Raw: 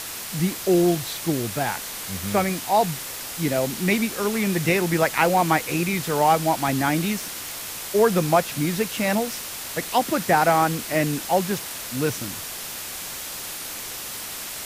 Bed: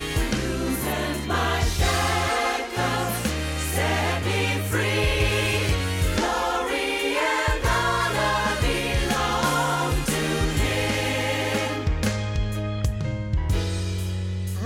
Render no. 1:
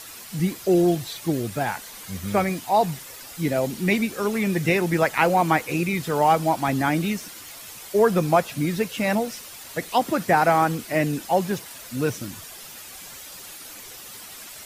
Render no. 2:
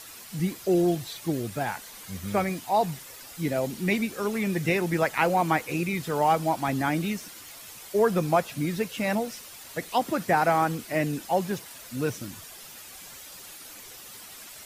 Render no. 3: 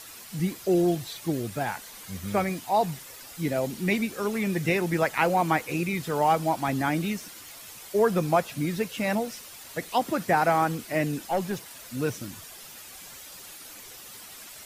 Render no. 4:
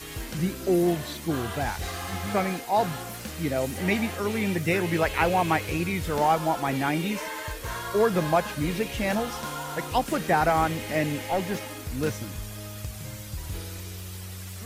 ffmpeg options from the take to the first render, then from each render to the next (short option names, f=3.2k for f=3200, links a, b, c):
-af "afftdn=nr=10:nf=-34"
-af "volume=-4dB"
-filter_complex "[0:a]asettb=1/sr,asplit=3[a][b][c];[a]atrim=end=11.274[d];[b]atrim=start=11.27:end=11.77,asetpts=PTS-STARTPTS,afade=t=in:d=0.004:c=qsin,afade=t=out:st=0.496:d=0.004:c=qsin,aeval=exprs='(tanh(7.08*val(0)+0.2)-tanh(0.2))/7.08':c=same[e];[c]atrim=start=11.766[f];[d][e]acrossfade=d=0.004:c1=hsin:c2=qsin[g];[g][f]acrossfade=d=0.004:c1=qsin:c2=hsin"
-filter_complex "[1:a]volume=-12dB[a];[0:a][a]amix=inputs=2:normalize=0"